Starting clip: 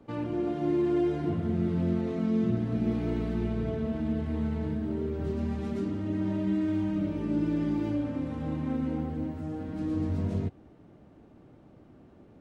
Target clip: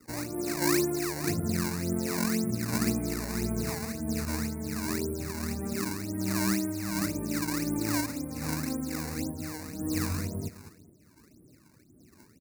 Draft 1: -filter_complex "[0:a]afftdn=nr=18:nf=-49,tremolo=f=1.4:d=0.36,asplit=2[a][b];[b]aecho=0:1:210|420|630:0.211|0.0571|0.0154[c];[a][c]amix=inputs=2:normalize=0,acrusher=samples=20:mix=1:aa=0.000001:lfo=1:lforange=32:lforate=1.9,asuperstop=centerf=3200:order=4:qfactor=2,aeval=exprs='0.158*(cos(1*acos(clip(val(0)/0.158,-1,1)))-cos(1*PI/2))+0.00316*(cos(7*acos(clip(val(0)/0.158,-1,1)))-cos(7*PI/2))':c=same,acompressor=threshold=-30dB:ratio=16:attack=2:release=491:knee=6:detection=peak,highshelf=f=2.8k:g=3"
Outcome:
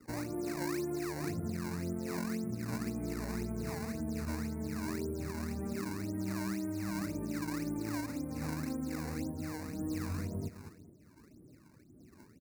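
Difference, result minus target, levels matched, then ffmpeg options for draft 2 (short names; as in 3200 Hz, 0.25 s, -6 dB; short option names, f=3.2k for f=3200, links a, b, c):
compressor: peak gain reduction +10.5 dB; 4000 Hz band -4.5 dB
-filter_complex "[0:a]afftdn=nr=18:nf=-49,tremolo=f=1.4:d=0.36,asplit=2[a][b];[b]aecho=0:1:210|420|630:0.211|0.0571|0.0154[c];[a][c]amix=inputs=2:normalize=0,acrusher=samples=20:mix=1:aa=0.000001:lfo=1:lforange=32:lforate=1.9,asuperstop=centerf=3200:order=4:qfactor=2,aeval=exprs='0.158*(cos(1*acos(clip(val(0)/0.158,-1,1)))-cos(1*PI/2))+0.00316*(cos(7*acos(clip(val(0)/0.158,-1,1)))-cos(7*PI/2))':c=same,highshelf=f=2.8k:g=11"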